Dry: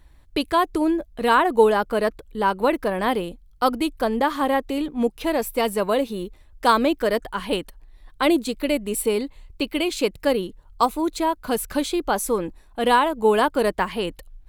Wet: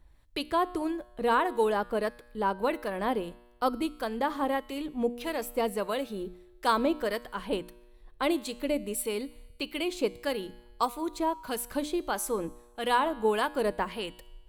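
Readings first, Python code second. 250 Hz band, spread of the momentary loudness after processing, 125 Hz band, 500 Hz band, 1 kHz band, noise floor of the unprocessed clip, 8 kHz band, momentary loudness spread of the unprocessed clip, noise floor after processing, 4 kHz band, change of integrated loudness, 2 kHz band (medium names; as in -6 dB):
-8.5 dB, 10 LU, -8.5 dB, -8.5 dB, -8.0 dB, -52 dBFS, -7.0 dB, 9 LU, -57 dBFS, -8.0 dB, -8.5 dB, -8.0 dB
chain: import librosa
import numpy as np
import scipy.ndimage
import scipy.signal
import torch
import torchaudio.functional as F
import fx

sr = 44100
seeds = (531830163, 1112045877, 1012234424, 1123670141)

y = fx.harmonic_tremolo(x, sr, hz=1.6, depth_pct=50, crossover_hz=1100.0)
y = fx.hum_notches(y, sr, base_hz=60, count=5)
y = fx.comb_fb(y, sr, f0_hz=120.0, decay_s=1.2, harmonics='all', damping=0.0, mix_pct=50)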